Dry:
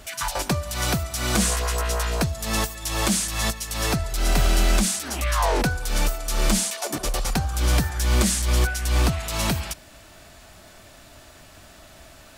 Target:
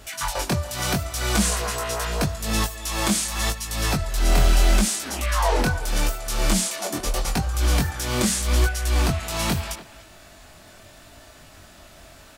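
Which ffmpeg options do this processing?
ffmpeg -i in.wav -filter_complex "[0:a]flanger=delay=18.5:depth=5.8:speed=0.8,asplit=2[link_01][link_02];[link_02]adelay=290,highpass=300,lowpass=3400,asoftclip=type=hard:threshold=-21dB,volume=-14dB[link_03];[link_01][link_03]amix=inputs=2:normalize=0,volume=3dB" out.wav

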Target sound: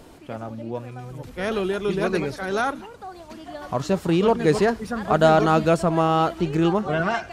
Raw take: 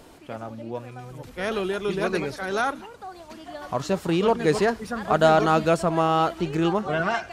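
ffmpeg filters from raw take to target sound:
ffmpeg -i in.wav -af "lowshelf=frequency=410:gain=4.5" out.wav

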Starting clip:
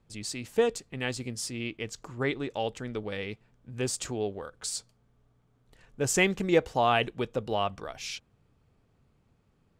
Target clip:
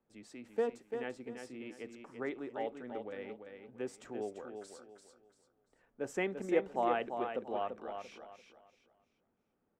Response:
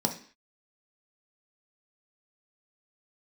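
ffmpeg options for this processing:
-filter_complex "[0:a]acrossover=split=230 2100:gain=0.2 1 0.158[link_01][link_02][link_03];[link_01][link_02][link_03]amix=inputs=3:normalize=0,aecho=1:1:341|682|1023|1364:0.447|0.134|0.0402|0.0121,asplit=2[link_04][link_05];[1:a]atrim=start_sample=2205,atrim=end_sample=3528[link_06];[link_05][link_06]afir=irnorm=-1:irlink=0,volume=-21.5dB[link_07];[link_04][link_07]amix=inputs=2:normalize=0,volume=-9dB"

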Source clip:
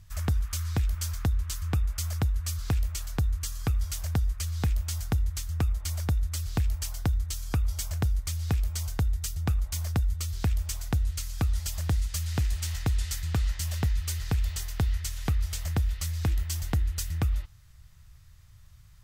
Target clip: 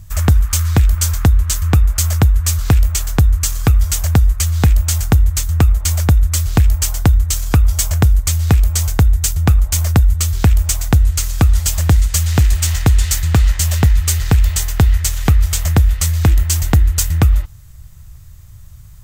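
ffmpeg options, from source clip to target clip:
ffmpeg -i in.wav -filter_complex "[0:a]aexciter=amount=2.7:drive=2.8:freq=6600,apsyclip=15dB,asplit=2[link_01][link_02];[link_02]adynamicsmooth=sensitivity=7.5:basefreq=730,volume=0.5dB[link_03];[link_01][link_03]amix=inputs=2:normalize=0,volume=-6dB" out.wav

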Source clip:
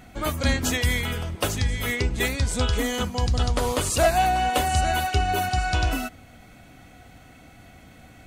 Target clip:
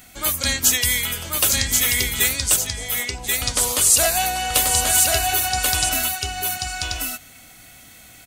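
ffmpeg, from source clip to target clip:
ffmpeg -i in.wav -filter_complex "[0:a]asettb=1/sr,asplit=3[link_01][link_02][link_03];[link_01]atrim=end=2.564[link_04];[link_02]atrim=start=2.56:end=3.42,asetpts=PTS-STARTPTS,afade=type=in:duration=0.004:curve=qsin,afade=type=out:start_time=0.856:duration=0.004:curve=qsin,bandpass=frequency=650:width_type=q:width=3.3:csg=0[link_05];[link_03]atrim=start=3.416[link_06];[link_04][link_05]acrossfade=duration=0.004:curve1=hsin:curve2=qsin[link_07];[link_07][link_06]acrossfade=duration=0.004:curve1=qsin:curve2=hsin,aecho=1:1:1085:0.708,crystalizer=i=9:c=0,volume=-6.5dB" out.wav

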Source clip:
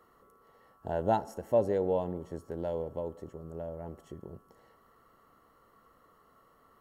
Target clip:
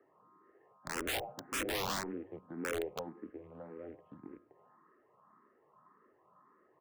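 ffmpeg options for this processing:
ffmpeg -i in.wav -filter_complex "[0:a]aemphasis=mode=reproduction:type=50kf,acrusher=bits=4:mode=log:mix=0:aa=0.000001,highpass=frequency=250:width_type=q:width=0.5412,highpass=frequency=250:width_type=q:width=1.307,lowpass=frequency=2300:width_type=q:width=0.5176,lowpass=frequency=2300:width_type=q:width=0.7071,lowpass=frequency=2300:width_type=q:width=1.932,afreqshift=-76,asplit=2[link_01][link_02];[link_02]aecho=0:1:101:0.0891[link_03];[link_01][link_03]amix=inputs=2:normalize=0,aeval=exprs='(mod(22.4*val(0)+1,2)-1)/22.4':channel_layout=same,asplit=2[link_04][link_05];[link_05]afreqshift=1.8[link_06];[link_04][link_06]amix=inputs=2:normalize=1" out.wav

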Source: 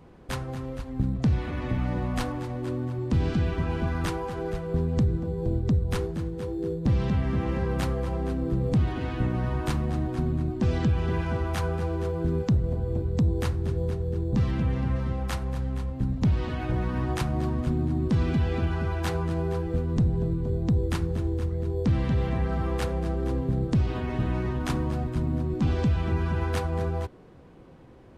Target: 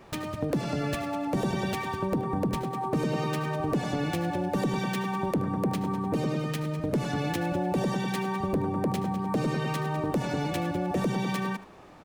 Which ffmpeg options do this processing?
ffmpeg -i in.wav -af "acompressor=threshold=-30dB:ratio=1.5,aecho=1:1:179:0.158,asetrate=103194,aresample=44100" out.wav

